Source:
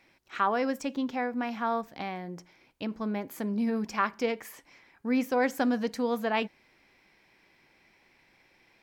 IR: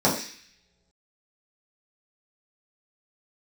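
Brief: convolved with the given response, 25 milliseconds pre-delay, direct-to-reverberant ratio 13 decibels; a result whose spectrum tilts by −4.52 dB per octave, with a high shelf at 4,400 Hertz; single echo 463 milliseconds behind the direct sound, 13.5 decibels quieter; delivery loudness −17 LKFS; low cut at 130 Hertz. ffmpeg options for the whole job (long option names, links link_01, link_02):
-filter_complex "[0:a]highpass=130,highshelf=frequency=4400:gain=-5,aecho=1:1:463:0.211,asplit=2[link_01][link_02];[1:a]atrim=start_sample=2205,adelay=25[link_03];[link_02][link_03]afir=irnorm=-1:irlink=0,volume=-30dB[link_04];[link_01][link_04]amix=inputs=2:normalize=0,volume=13dB"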